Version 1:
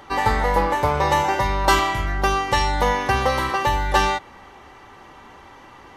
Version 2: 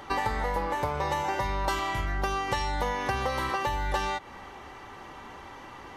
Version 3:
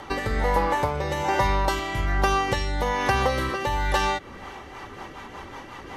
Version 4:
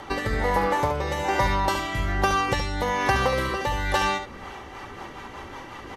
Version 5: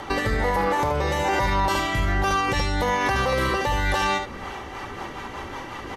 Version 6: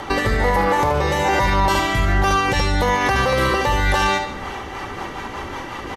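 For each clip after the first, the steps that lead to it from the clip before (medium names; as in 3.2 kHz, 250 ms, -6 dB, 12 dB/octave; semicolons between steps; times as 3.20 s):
compression 6:1, threshold -26 dBFS, peak gain reduction 13.5 dB
rotary cabinet horn 1.2 Hz, later 5.5 Hz, at 4.13 s; trim +8 dB
delay 71 ms -8 dB
peak limiter -18 dBFS, peak gain reduction 10 dB; trim +4.5 dB
delay 144 ms -13 dB; trim +4.5 dB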